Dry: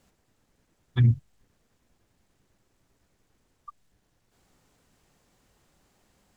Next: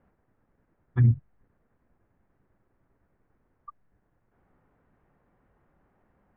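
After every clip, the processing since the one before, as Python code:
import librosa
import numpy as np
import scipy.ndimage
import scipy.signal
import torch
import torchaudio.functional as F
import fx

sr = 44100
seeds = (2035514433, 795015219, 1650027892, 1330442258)

y = scipy.signal.sosfilt(scipy.signal.butter(4, 1800.0, 'lowpass', fs=sr, output='sos'), x)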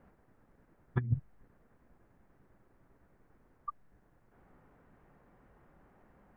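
y = fx.peak_eq(x, sr, hz=90.0, db=-5.0, octaves=0.43)
y = fx.over_compress(y, sr, threshold_db=-26.0, ratio=-0.5)
y = y * librosa.db_to_amplitude(-2.5)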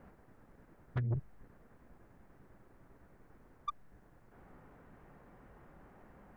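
y = 10.0 ** (-34.0 / 20.0) * np.tanh(x / 10.0 ** (-34.0 / 20.0))
y = y * librosa.db_to_amplitude(5.0)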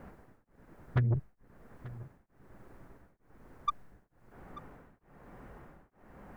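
y = x + 10.0 ** (-18.0 / 20.0) * np.pad(x, (int(887 * sr / 1000.0), 0))[:len(x)]
y = y * np.abs(np.cos(np.pi * 1.1 * np.arange(len(y)) / sr))
y = y * librosa.db_to_amplitude(7.5)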